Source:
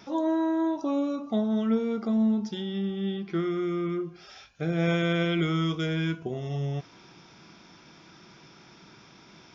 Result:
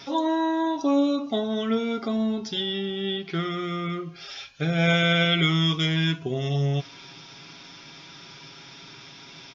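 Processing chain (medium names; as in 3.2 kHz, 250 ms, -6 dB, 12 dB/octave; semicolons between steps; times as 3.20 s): peaking EQ 3.6 kHz +9.5 dB 1.7 oct; comb 7.3 ms, depth 62%; trim +2 dB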